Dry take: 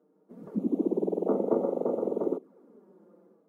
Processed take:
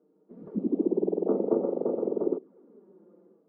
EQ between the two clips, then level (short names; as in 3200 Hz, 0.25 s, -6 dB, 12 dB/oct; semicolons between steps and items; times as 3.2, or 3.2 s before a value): air absorption 250 m; low shelf 140 Hz +7.5 dB; bell 380 Hz +6 dB 0.77 oct; -3.5 dB